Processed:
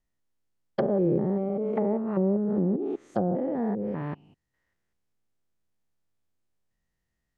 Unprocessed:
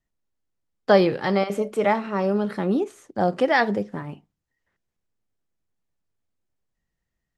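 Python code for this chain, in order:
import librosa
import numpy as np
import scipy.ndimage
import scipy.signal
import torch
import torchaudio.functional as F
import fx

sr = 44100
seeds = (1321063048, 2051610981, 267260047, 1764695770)

y = fx.spec_steps(x, sr, hold_ms=200)
y = fx.env_lowpass_down(y, sr, base_hz=450.0, full_db=-22.5)
y = F.gain(torch.from_numpy(y), 1.5).numpy()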